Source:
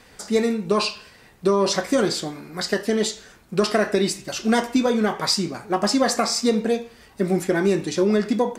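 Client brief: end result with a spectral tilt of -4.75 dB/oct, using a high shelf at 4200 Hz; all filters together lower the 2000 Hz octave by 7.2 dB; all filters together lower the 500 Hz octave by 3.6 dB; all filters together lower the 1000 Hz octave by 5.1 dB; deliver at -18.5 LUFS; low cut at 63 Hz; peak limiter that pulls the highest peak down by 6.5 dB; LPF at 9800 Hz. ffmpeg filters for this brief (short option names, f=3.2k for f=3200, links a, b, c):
-af "highpass=63,lowpass=9.8k,equalizer=f=500:t=o:g=-3.5,equalizer=f=1k:t=o:g=-3.5,equalizer=f=2k:t=o:g=-7,highshelf=f=4.2k:g=-5.5,volume=8.5dB,alimiter=limit=-7.5dB:level=0:latency=1"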